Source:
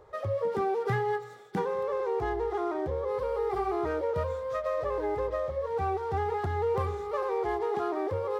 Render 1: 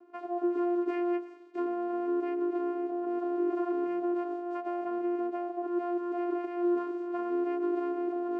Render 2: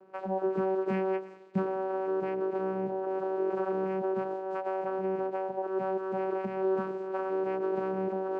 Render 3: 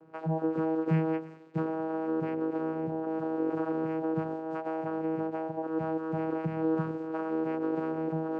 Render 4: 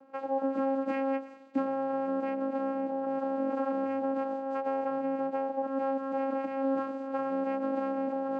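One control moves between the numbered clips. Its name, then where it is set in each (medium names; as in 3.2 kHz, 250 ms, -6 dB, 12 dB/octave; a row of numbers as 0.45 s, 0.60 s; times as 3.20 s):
vocoder, frequency: 350 Hz, 190 Hz, 160 Hz, 270 Hz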